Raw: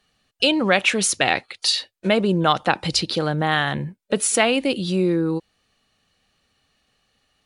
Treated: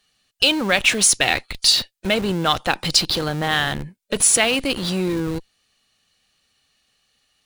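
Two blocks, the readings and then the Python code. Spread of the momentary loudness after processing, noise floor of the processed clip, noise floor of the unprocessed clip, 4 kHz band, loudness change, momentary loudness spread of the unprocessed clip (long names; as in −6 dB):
10 LU, −69 dBFS, −71 dBFS, +4.5 dB, +2.0 dB, 6 LU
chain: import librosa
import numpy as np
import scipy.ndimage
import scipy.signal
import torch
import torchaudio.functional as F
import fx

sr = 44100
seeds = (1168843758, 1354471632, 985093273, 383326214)

p1 = fx.high_shelf(x, sr, hz=2100.0, db=11.5)
p2 = fx.schmitt(p1, sr, flips_db=-21.5)
p3 = p1 + (p2 * librosa.db_to_amplitude(-7.0))
y = p3 * librosa.db_to_amplitude(-5.5)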